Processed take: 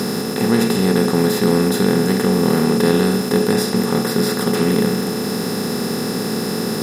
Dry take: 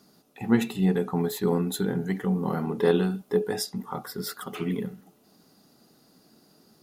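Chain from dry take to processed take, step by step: spectral levelling over time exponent 0.2; whistle 5.2 kHz -36 dBFS; trim +1.5 dB

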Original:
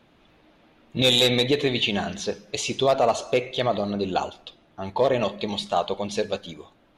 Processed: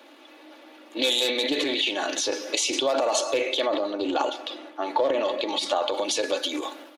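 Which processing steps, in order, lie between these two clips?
transient shaper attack -2 dB, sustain +10 dB; treble shelf 5.2 kHz +7.5 dB, from 3.67 s -2 dB, from 5.92 s +10.5 dB; compression 5:1, threshold -30 dBFS, peak gain reduction 15 dB; elliptic high-pass 280 Hz, stop band 40 dB; comb 3.5 ms, depth 46%; loudspeaker Doppler distortion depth 0.13 ms; trim +8 dB

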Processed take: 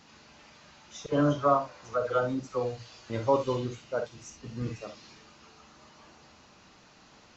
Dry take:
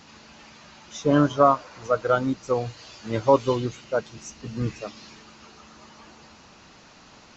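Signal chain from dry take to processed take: 1.06–3.10 s: phase dispersion lows, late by 65 ms, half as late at 1.3 kHz; on a send: reverberation, pre-delay 27 ms, DRR 6.5 dB; on the sum: trim -7 dB

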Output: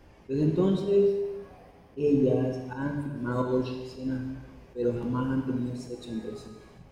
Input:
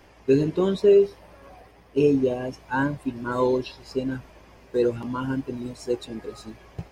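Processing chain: bass shelf 420 Hz +9.5 dB; slow attack 154 ms; gated-style reverb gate 440 ms falling, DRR 2.5 dB; trim -8 dB

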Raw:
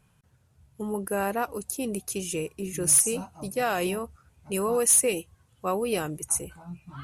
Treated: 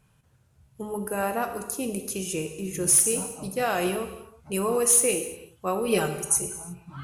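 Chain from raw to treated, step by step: 5.87–6.46 s: comb 5.1 ms, depth 97%; gated-style reverb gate 380 ms falling, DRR 6 dB

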